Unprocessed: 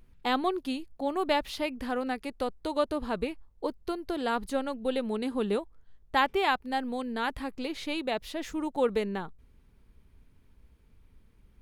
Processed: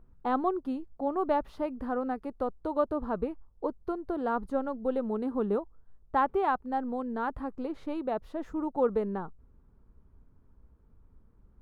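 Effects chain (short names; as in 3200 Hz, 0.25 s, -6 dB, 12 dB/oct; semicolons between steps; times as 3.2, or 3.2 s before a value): EQ curve 1300 Hz 0 dB, 2200 Hz -17 dB, 3600 Hz -20 dB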